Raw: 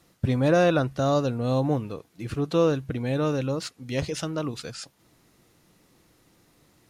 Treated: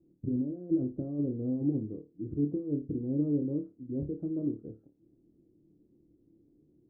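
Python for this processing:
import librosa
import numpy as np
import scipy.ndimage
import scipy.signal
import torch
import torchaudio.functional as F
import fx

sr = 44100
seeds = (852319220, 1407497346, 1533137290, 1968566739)

p1 = fx.over_compress(x, sr, threshold_db=-24.0, ratio=-0.5)
p2 = fx.ladder_lowpass(p1, sr, hz=370.0, resonance_pct=60)
y = p2 + fx.room_flutter(p2, sr, wall_m=4.7, rt60_s=0.25, dry=0)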